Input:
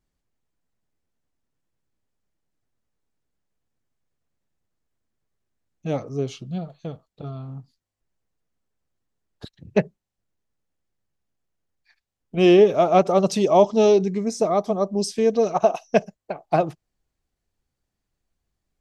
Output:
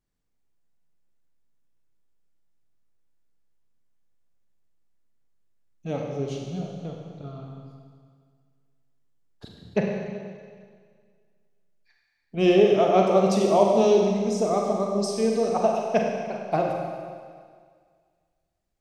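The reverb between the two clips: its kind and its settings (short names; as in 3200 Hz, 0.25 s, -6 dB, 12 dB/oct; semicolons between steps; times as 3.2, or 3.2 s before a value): Schroeder reverb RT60 1.9 s, combs from 32 ms, DRR 0 dB; gain -5 dB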